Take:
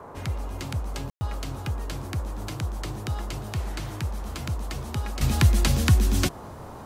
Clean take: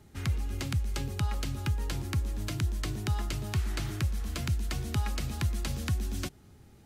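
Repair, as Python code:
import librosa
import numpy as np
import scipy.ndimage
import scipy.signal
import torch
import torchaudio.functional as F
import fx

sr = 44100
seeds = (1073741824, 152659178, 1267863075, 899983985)

y = fx.fix_ambience(x, sr, seeds[0], print_start_s=6.31, print_end_s=6.81, start_s=1.1, end_s=1.21)
y = fx.noise_reduce(y, sr, print_start_s=6.31, print_end_s=6.81, reduce_db=7.0)
y = fx.gain(y, sr, db=fx.steps((0.0, 0.0), (5.21, -11.5)))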